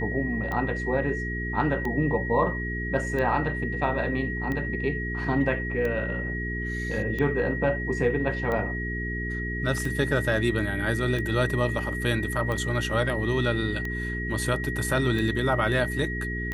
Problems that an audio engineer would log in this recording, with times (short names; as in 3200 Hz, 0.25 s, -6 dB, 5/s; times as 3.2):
hum 60 Hz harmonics 7 -32 dBFS
tick 45 rpm -19 dBFS
tone 1900 Hz -32 dBFS